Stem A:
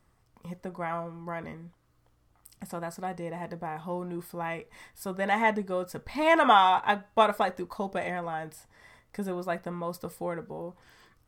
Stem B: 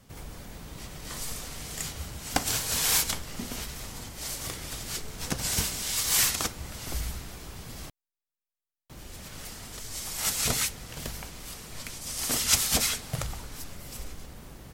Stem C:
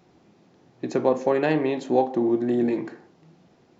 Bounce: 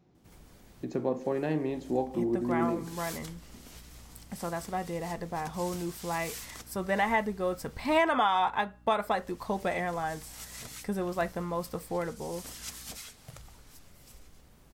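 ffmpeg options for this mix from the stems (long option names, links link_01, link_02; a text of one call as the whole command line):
ffmpeg -i stem1.wav -i stem2.wav -i stem3.wav -filter_complex "[0:a]aeval=exprs='val(0)+0.002*(sin(2*PI*60*n/s)+sin(2*PI*2*60*n/s)/2+sin(2*PI*3*60*n/s)/3+sin(2*PI*4*60*n/s)/4+sin(2*PI*5*60*n/s)/5)':channel_layout=same,adelay=1700,volume=1dB[link_01];[1:a]acompressor=threshold=-35dB:ratio=1.5,adelay=150,volume=-13dB[link_02];[2:a]lowshelf=frequency=280:gain=11.5,volume=-12.5dB,asplit=2[link_03][link_04];[link_04]apad=whole_len=656298[link_05];[link_02][link_05]sidechaincompress=threshold=-42dB:ratio=8:attack=46:release=278[link_06];[link_01][link_06][link_03]amix=inputs=3:normalize=0,alimiter=limit=-16dB:level=0:latency=1:release=379" out.wav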